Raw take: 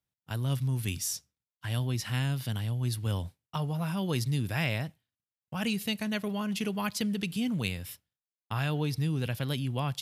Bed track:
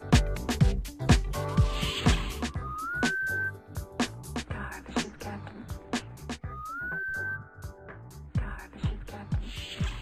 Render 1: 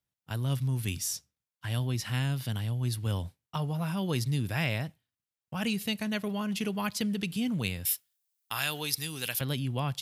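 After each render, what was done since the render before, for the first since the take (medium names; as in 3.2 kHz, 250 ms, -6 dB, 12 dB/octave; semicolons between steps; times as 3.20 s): 7.85–9.41 s: tilt EQ +4.5 dB/octave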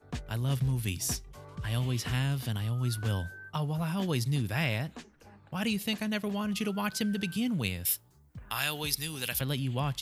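add bed track -16.5 dB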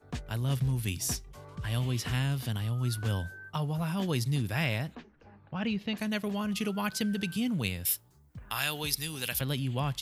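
4.95–5.97 s: distance through air 240 m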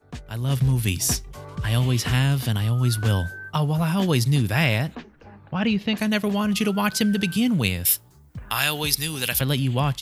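level rider gain up to 9.5 dB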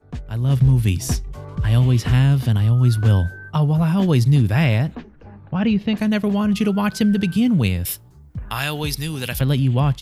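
tilt EQ -2 dB/octave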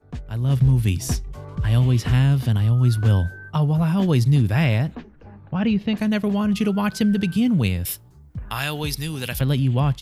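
trim -2 dB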